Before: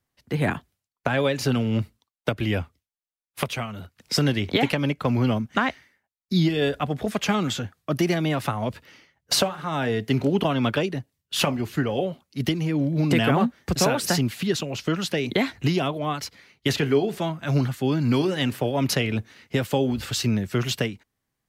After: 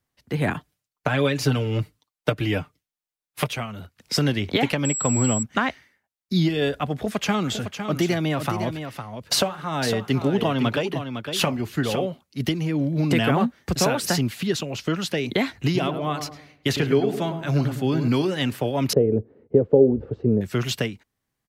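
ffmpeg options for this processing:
-filter_complex "[0:a]asettb=1/sr,asplit=3[a][b][c];[a]atrim=end=0.544[d];[b]atrim=start=0.54:end=3.53,asetpts=PTS-STARTPTS,afade=t=in:d=0.004:c=qsin,afade=t=out:st=2.986:d=0.004:c=qsin,aecho=1:1:6.6:0.65,atrim=end_sample=131859[e];[c]atrim=start=3.526[f];[d][e]acrossfade=d=0.004:c1=hsin:c2=qsin[g];[g][f]acrossfade=d=0.004:c1=qsin:c2=hsin,asettb=1/sr,asplit=3[h][i][j];[h]atrim=end=4.854[k];[i]atrim=start=4.85:end=5.43,asetpts=PTS-STARTPTS,afade=t=in:d=0.004:c=qsin,afade=t=out:st=0.576:d=0.004:c=qsin,aeval=exprs='val(0)+0.0562*sin(2*PI*7700*n/s)':c=same[l];[j]atrim=start=5.426[m];[k][l]acrossfade=d=0.004:c1=hsin:c2=qsin[n];[n][m]acrossfade=d=0.004:c1=qsin:c2=hsin,asplit=3[o][p][q];[o]afade=t=out:st=7.48:d=0.02[r];[p]aecho=1:1:507:0.376,afade=t=in:st=7.48:d=0.02,afade=t=out:st=12.05:d=0.02[s];[q]afade=t=in:st=12.05:d=0.02[t];[r][s][t]amix=inputs=3:normalize=0,asettb=1/sr,asplit=3[u][v][w];[u]atrim=end=15.584[x];[v]atrim=start=15.58:end=18.08,asetpts=PTS-STARTPTS,afade=t=in:d=0.004:c=qsin,afade=t=out:st=2.496:d=0.004:c=qsin,asplit=2[y][z];[z]adelay=106,lowpass=f=1k:p=1,volume=-6.5dB,asplit=2[aa][ab];[ab]adelay=106,lowpass=f=1k:p=1,volume=0.43,asplit=2[ac][ad];[ad]adelay=106,lowpass=f=1k:p=1,volume=0.43,asplit=2[ae][af];[af]adelay=106,lowpass=f=1k:p=1,volume=0.43,asplit=2[ag][ah];[ah]adelay=106,lowpass=f=1k:p=1,volume=0.43[ai];[y][aa][ac][ae][ag][ai]amix=inputs=6:normalize=0,atrim=end_sample=110250[aj];[w]atrim=start=18.076[ak];[x][aj]acrossfade=d=0.004:c1=hsin:c2=qsin[al];[al][ak]acrossfade=d=0.004:c1=qsin:c2=hsin,asettb=1/sr,asplit=3[am][an][ao];[am]atrim=end=18.934[ap];[an]atrim=start=18.93:end=20.41,asetpts=PTS-STARTPTS,afade=t=in:d=0.004:c=qsin,afade=t=out:st=1.476:d=0.004:c=qsin,lowpass=f=450:t=q:w=4.6[aq];[ao]atrim=start=20.406[ar];[ap][aq]acrossfade=d=0.004:c1=hsin:c2=qsin[as];[as][ar]acrossfade=d=0.004:c1=qsin:c2=hsin"

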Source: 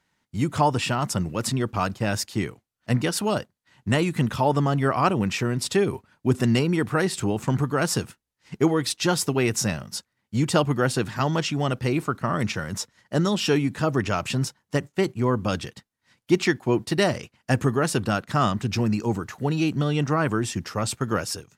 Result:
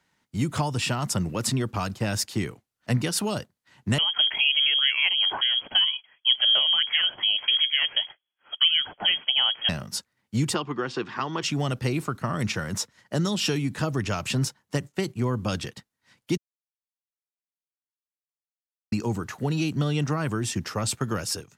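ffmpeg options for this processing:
-filter_complex "[0:a]asettb=1/sr,asplit=3[a][b][c];[a]atrim=end=3.984[d];[b]atrim=start=3.98:end=9.69,asetpts=PTS-STARTPTS,afade=t=in:d=0.004:c=qsin,afade=t=out:st=5.706:d=0.004:c=qsin,lowpass=f=2.9k:t=q:w=0.5098,lowpass=f=2.9k:t=q:w=0.6013,lowpass=f=2.9k:t=q:w=0.9,lowpass=f=2.9k:t=q:w=2.563,afreqshift=-3400[e];[c]atrim=start=9.686[f];[d][e]acrossfade=d=0.004:c1=hsin:c2=qsin[g];[g][f]acrossfade=d=0.004:c1=qsin:c2=hsin,asplit=3[h][i][j];[h]afade=t=out:st=10.53:d=0.02[k];[i]highpass=270,equalizer=f=360:t=q:w=4:g=5,equalizer=f=600:t=q:w=4:g=-6,equalizer=f=1.1k:t=q:w=4:g=7,equalizer=f=4.2k:t=q:w=4:g=-7,lowpass=f=4.6k:w=0.5412,lowpass=f=4.6k:w=1.3066,afade=t=in:st=10.53:d=0.02,afade=t=out:st=11.42:d=0.02[l];[j]afade=t=in:st=11.42:d=0.02[m];[k][l][m]amix=inputs=3:normalize=0,asplit=3[n][o][p];[n]atrim=end=16.37,asetpts=PTS-STARTPTS,afade=t=out:st=16.366:d=0.004:c=hsin[q];[o]atrim=start=16.37:end=18.92,asetpts=PTS-STARTPTS,volume=0[r];[p]atrim=start=18.92,asetpts=PTS-STARTPTS,afade=t=in:d=0.004:c=hsin[s];[q][r][s]concat=n=3:v=0:a=1,lowshelf=f=65:g=-6,acrossover=split=170|3000[t][u][v];[u]acompressor=threshold=-28dB:ratio=6[w];[t][w][v]amix=inputs=3:normalize=0,volume=1.5dB"

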